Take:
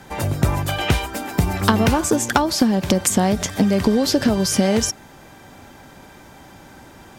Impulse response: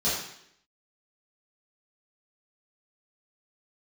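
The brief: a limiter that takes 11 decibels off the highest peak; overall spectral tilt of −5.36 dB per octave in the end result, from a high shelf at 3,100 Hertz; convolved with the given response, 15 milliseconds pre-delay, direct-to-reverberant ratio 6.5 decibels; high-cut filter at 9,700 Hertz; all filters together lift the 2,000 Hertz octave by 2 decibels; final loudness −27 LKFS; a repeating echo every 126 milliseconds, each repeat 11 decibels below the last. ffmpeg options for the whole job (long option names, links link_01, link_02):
-filter_complex "[0:a]lowpass=9700,equalizer=frequency=2000:width_type=o:gain=5,highshelf=frequency=3100:gain=-7,alimiter=limit=-13dB:level=0:latency=1,aecho=1:1:126|252|378:0.282|0.0789|0.0221,asplit=2[link_01][link_02];[1:a]atrim=start_sample=2205,adelay=15[link_03];[link_02][link_03]afir=irnorm=-1:irlink=0,volume=-17.5dB[link_04];[link_01][link_04]amix=inputs=2:normalize=0,volume=-6.5dB"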